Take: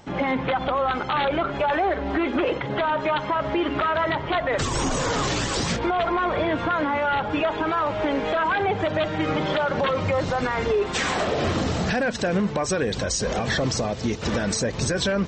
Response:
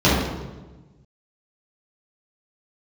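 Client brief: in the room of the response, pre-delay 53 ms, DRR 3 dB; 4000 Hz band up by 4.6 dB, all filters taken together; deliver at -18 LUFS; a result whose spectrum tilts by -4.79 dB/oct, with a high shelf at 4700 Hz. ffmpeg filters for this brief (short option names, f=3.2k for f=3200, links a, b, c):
-filter_complex "[0:a]equalizer=f=4k:t=o:g=9,highshelf=f=4.7k:g=-6.5,asplit=2[a][b];[1:a]atrim=start_sample=2205,adelay=53[c];[b][c]afir=irnorm=-1:irlink=0,volume=-26dB[d];[a][d]amix=inputs=2:normalize=0,volume=1dB"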